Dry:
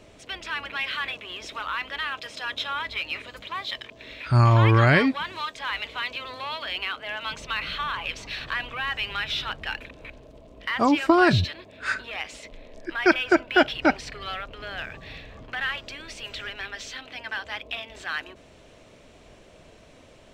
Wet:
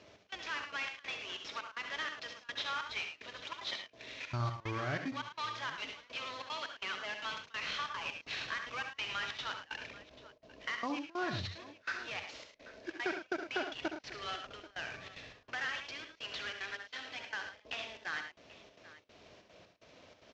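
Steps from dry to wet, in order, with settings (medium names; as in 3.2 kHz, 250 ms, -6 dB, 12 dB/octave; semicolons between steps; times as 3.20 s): CVSD coder 32 kbps; high-pass 69 Hz; bass shelf 250 Hz -6.5 dB; compression 6:1, threshold -28 dBFS, peak gain reduction 13 dB; trance gate "xx..xxxx." 187 bpm -24 dB; on a send: multi-tap echo 66/76/108/786 ms -9.5/-11/-11/-18 dB; on the sum: trim -6 dB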